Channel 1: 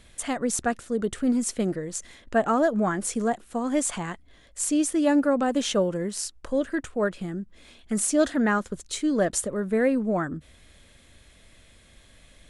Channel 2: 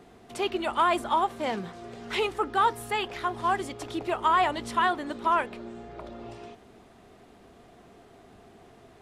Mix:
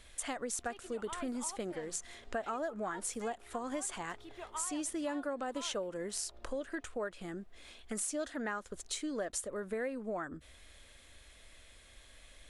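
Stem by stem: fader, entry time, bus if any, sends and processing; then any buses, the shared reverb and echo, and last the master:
-2.0 dB, 0.00 s, no send, dry
-6.0 dB, 0.30 s, no send, low shelf 150 Hz +10 dB; auto duck -11 dB, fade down 0.75 s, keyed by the first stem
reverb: off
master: bell 160 Hz -12 dB 1.8 oct; compressor 4:1, threshold -36 dBFS, peak gain reduction 13 dB

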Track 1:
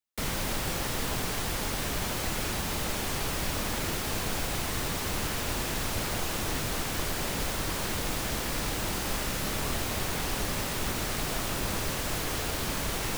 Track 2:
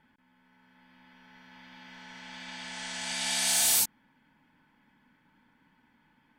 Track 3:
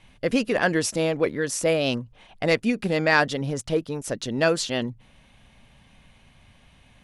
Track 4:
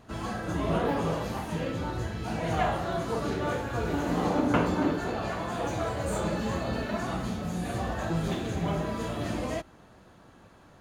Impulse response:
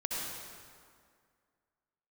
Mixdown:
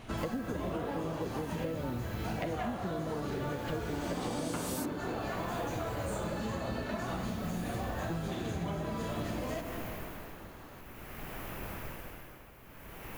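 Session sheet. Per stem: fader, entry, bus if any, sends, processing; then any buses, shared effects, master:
-13.0 dB, 0.00 s, send -6 dB, tremolo 0.52 Hz, depth 82%; band shelf 5800 Hz -12.5 dB
-4.5 dB, 1.00 s, no send, dry
+0.5 dB, 0.00 s, no send, treble ducked by the level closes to 360 Hz, closed at -21 dBFS
+1.0 dB, 0.00 s, send -12 dB, dry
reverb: on, RT60 2.1 s, pre-delay 57 ms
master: modulation noise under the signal 29 dB; compressor 12:1, threshold -32 dBFS, peak gain reduction 17 dB

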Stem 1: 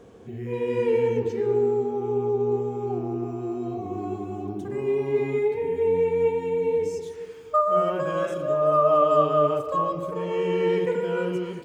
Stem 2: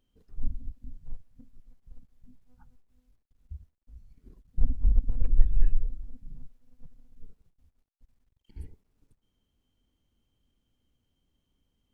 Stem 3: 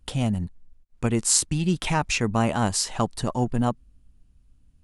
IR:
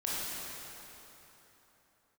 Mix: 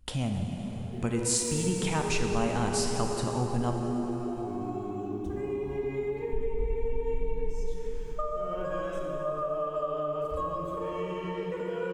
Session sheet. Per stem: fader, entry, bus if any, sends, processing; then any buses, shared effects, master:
-5.5 dB, 0.65 s, send -4.5 dB, HPF 58 Hz; compressor, threshold -25 dBFS, peak gain reduction 10.5 dB
+0.5 dB, 1.75 s, send -5 dB, compressor 2.5:1, threshold -27 dBFS, peak gain reduction 13 dB
-4.0 dB, 0.00 s, send -5.5 dB, hard clip -9 dBFS, distortion -30 dB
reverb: on, RT60 3.5 s, pre-delay 18 ms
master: compressor 1.5:1, threshold -36 dBFS, peak gain reduction 7.5 dB

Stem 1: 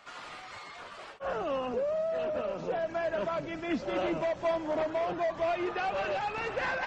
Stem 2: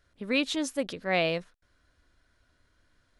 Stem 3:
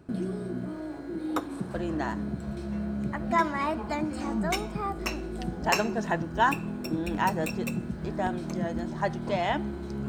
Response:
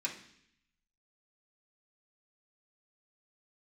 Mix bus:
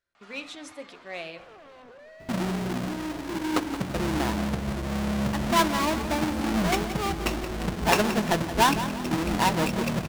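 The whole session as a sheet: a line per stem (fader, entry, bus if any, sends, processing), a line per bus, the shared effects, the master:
-6.5 dB, 0.15 s, no send, echo send -10.5 dB, notch 560 Hz, Q 15; limiter -33 dBFS, peak gain reduction 11 dB; wavefolder -38 dBFS
-14.0 dB, 0.00 s, send -6.5 dB, no echo send, low shelf 220 Hz -10 dB; sample leveller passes 1
-0.5 dB, 2.20 s, no send, echo send -12 dB, half-waves squared off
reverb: on, RT60 0.65 s, pre-delay 3 ms
echo: feedback echo 0.173 s, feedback 34%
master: high shelf 9800 Hz -6 dB

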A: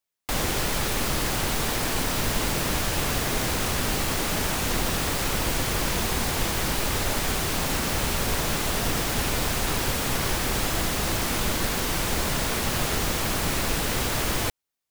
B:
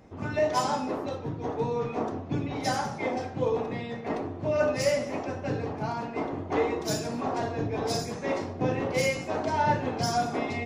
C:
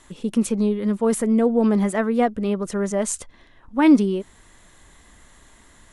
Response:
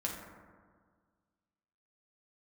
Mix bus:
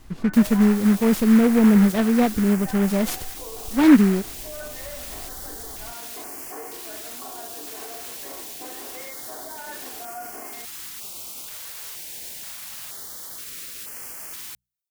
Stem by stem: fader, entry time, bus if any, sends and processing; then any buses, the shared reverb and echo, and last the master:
-16.0 dB, 0.05 s, bus A, no send, notches 60/120/180 Hz; stepped notch 2.1 Hz 270–3700 Hz
-5.5 dB, 0.00 s, bus A, no send, elliptic band-pass 220–1700 Hz; comb 2.8 ms, depth 46%
-4.0 dB, 0.00 s, no bus, no send, tone controls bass +14 dB, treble +2 dB; noise-modulated delay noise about 1400 Hz, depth 0.067 ms
bus A: 0.0 dB, tilt +3.5 dB/oct; limiter -26.5 dBFS, peak gain reduction 8.5 dB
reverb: off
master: dry

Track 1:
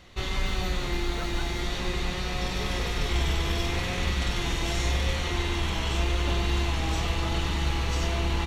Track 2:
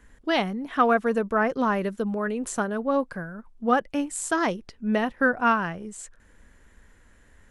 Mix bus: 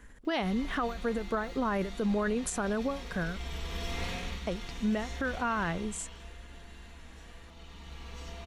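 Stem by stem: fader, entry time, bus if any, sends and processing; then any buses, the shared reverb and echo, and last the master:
5.66 s -7 dB -> 6.42 s -17 dB, 0.25 s, no send, comb 4.3 ms, depth 52%; upward compressor, threshold -48 dBFS; auto duck -8 dB, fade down 0.35 s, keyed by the second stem
+2.0 dB, 0.00 s, muted 3.37–4.47, no send, compressor, threshold -25 dBFS, peak gain reduction 10 dB; ending taper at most 160 dB/s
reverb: off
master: limiter -22 dBFS, peak gain reduction 8.5 dB

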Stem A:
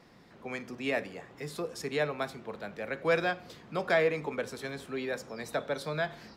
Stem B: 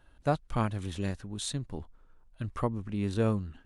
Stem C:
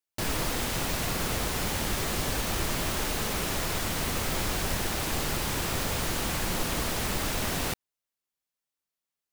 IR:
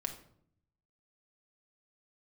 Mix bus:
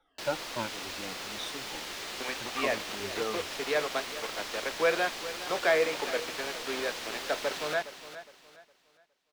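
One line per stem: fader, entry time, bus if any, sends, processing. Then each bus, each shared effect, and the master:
+1.5 dB, 1.75 s, no send, echo send -14.5 dB, bit-crush 6-bit
-7.5 dB, 0.00 s, no send, no echo send, moving spectral ripple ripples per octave 1.4, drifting -2.8 Hz, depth 23 dB
-10.5 dB, 0.00 s, no send, echo send -9 dB, high shelf 2600 Hz +11.5 dB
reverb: off
echo: feedback echo 0.412 s, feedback 31%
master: three-band isolator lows -18 dB, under 280 Hz, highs -17 dB, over 5400 Hz

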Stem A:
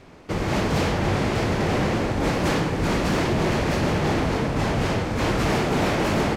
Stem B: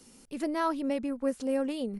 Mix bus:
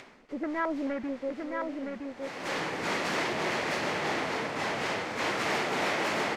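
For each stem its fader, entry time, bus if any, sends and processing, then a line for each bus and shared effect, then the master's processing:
-4.5 dB, 0.00 s, no send, no echo send, weighting filter A; upward compressor, threshold -39 dBFS; auto duck -20 dB, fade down 0.35 s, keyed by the second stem
1.05 s -8 dB -> 1.49 s -19.5 dB, 0.00 s, no send, echo send -4.5 dB, sample leveller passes 2; LFO low-pass square 2.3 Hz 590–1800 Hz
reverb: off
echo: echo 0.966 s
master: bell 2000 Hz +3.5 dB 0.33 oct

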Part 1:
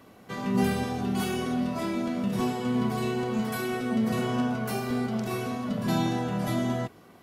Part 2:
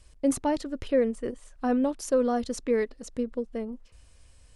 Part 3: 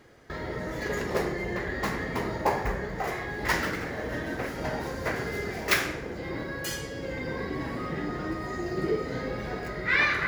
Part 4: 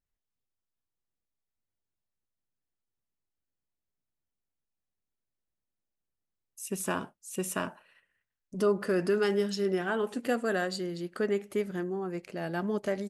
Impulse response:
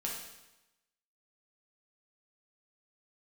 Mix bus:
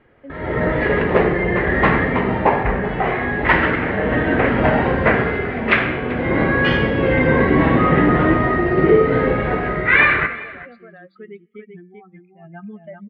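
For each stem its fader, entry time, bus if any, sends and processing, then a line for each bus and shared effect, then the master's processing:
-3.5 dB, 1.70 s, no send, no echo send, dry
-15.5 dB, 0.00 s, no send, no echo send, dry
-3.0 dB, 0.00 s, send -8.5 dB, echo send -17.5 dB, AGC gain up to 12 dB
-4.5 dB, 0.00 s, send -22 dB, echo send -4.5 dB, per-bin expansion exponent 3; limiter -32 dBFS, peak gain reduction 11.5 dB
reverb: on, RT60 1.0 s, pre-delay 4 ms
echo: echo 0.389 s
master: steep low-pass 3000 Hz 36 dB/oct; AGC gain up to 8 dB

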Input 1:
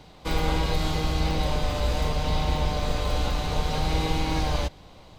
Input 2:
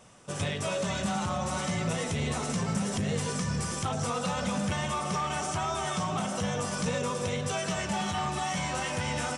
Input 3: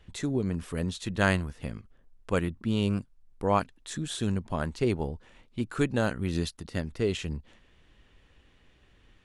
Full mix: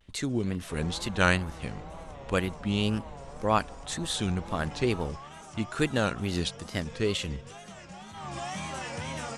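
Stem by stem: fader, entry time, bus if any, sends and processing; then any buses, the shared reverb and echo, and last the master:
-10.0 dB, 0.45 s, no send, LPF 1200 Hz 12 dB/oct; low shelf 450 Hz -11 dB
4.37 s -21 dB -> 4.6 s -14.5 dB -> 8.12 s -14.5 dB -> 8.34 s -4.5 dB, 0.00 s, no send, high shelf 9100 Hz -4.5 dB
-1.0 dB, 0.00 s, no send, gate -49 dBFS, range -6 dB; bell 4000 Hz +6.5 dB 2.9 oct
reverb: off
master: wow and flutter 140 cents

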